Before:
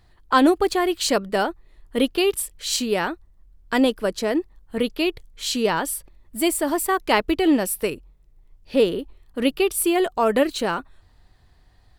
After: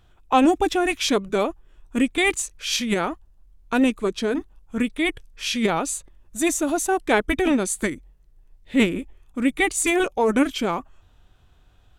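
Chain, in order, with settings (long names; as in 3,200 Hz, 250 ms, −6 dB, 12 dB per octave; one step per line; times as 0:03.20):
formants moved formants −4 semitones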